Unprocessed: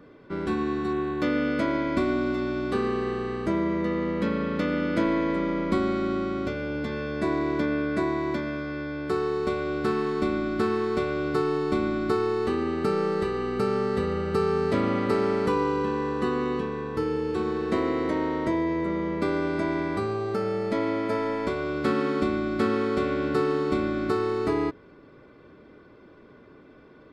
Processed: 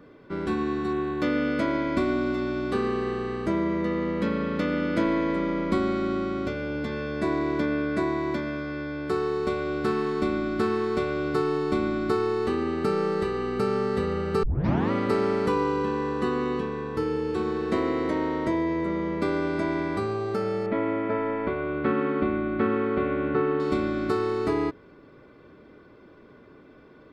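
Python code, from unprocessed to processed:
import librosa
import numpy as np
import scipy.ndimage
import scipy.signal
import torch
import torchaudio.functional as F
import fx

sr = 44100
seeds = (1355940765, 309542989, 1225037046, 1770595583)

y = fx.lowpass(x, sr, hz=2700.0, slope=24, at=(20.66, 23.6))
y = fx.edit(y, sr, fx.tape_start(start_s=14.43, length_s=0.48), tone=tone)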